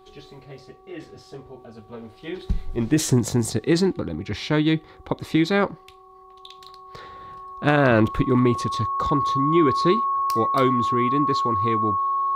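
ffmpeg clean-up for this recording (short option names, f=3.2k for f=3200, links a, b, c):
-af "bandreject=f=377.7:t=h:w=4,bandreject=f=755.4:t=h:w=4,bandreject=f=1.1331k:t=h:w=4,bandreject=f=1.1k:w=30"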